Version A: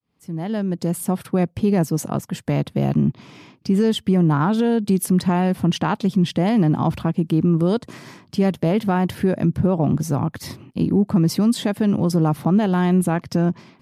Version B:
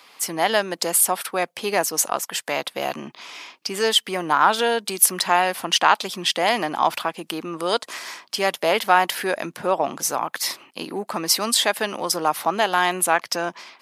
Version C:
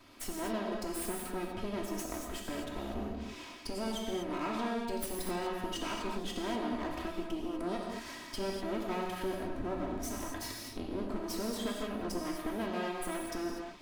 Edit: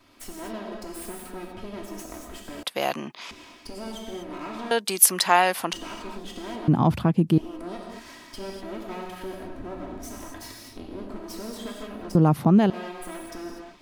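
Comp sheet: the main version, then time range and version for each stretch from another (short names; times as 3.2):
C
2.63–3.31 from B
4.71–5.73 from B
6.68–7.38 from A
12.15–12.7 from A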